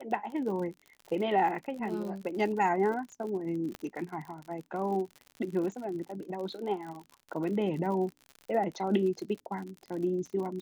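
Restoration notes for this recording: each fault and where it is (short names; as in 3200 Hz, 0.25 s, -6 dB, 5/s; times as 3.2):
crackle 63/s -38 dBFS
3.75 pop -23 dBFS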